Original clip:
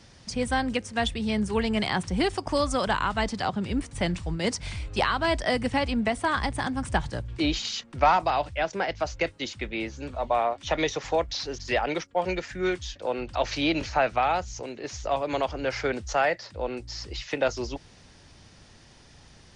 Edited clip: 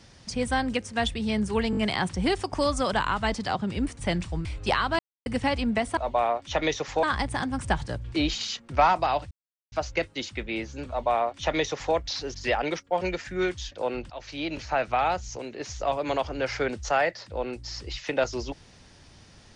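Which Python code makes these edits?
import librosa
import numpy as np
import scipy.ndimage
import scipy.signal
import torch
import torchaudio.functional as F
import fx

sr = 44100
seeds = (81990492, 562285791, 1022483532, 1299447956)

y = fx.edit(x, sr, fx.stutter(start_s=1.71, slice_s=0.02, count=4),
    fx.cut(start_s=4.39, length_s=0.36),
    fx.silence(start_s=5.29, length_s=0.27),
    fx.silence(start_s=8.55, length_s=0.41),
    fx.duplicate(start_s=10.13, length_s=1.06, to_s=6.27),
    fx.fade_in_from(start_s=13.34, length_s=0.96, floor_db=-16.5), tone=tone)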